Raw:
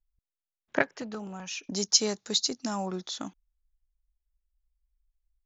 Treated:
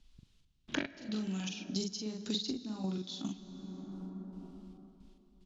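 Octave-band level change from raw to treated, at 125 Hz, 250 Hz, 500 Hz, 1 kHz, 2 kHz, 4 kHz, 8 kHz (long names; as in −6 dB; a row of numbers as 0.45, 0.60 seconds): +1.0 dB, −0.5 dB, −10.5 dB, −13.5 dB, −10.0 dB, −10.0 dB, can't be measured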